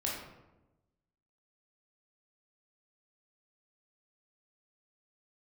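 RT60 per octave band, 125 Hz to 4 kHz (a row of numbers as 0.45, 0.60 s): 1.4, 1.3, 1.1, 0.90, 0.75, 0.55 s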